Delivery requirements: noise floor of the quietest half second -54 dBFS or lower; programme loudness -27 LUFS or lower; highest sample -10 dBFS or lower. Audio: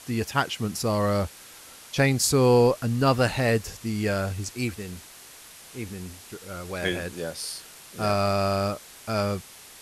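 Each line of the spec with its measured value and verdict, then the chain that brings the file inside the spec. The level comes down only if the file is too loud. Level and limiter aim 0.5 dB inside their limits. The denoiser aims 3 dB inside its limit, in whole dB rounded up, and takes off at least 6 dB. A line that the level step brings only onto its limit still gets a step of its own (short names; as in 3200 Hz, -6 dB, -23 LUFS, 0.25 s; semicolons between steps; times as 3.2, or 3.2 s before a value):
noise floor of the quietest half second -47 dBFS: fail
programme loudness -25.5 LUFS: fail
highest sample -8.0 dBFS: fail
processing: denoiser 8 dB, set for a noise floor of -47 dBFS; gain -2 dB; limiter -10.5 dBFS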